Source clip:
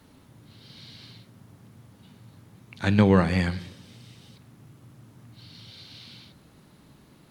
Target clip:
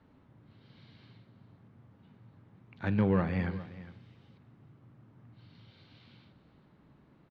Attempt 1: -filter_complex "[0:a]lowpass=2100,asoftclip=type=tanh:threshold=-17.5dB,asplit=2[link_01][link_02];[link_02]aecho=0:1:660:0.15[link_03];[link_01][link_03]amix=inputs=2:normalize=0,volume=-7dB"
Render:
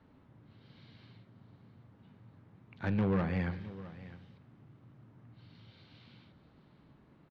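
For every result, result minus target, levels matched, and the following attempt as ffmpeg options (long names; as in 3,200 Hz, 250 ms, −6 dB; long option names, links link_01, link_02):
echo 252 ms late; soft clipping: distortion +9 dB
-filter_complex "[0:a]lowpass=2100,asoftclip=type=tanh:threshold=-17.5dB,asplit=2[link_01][link_02];[link_02]aecho=0:1:408:0.15[link_03];[link_01][link_03]amix=inputs=2:normalize=0,volume=-7dB"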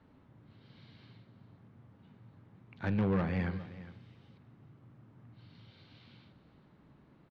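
soft clipping: distortion +9 dB
-filter_complex "[0:a]lowpass=2100,asoftclip=type=tanh:threshold=-10dB,asplit=2[link_01][link_02];[link_02]aecho=0:1:408:0.15[link_03];[link_01][link_03]amix=inputs=2:normalize=0,volume=-7dB"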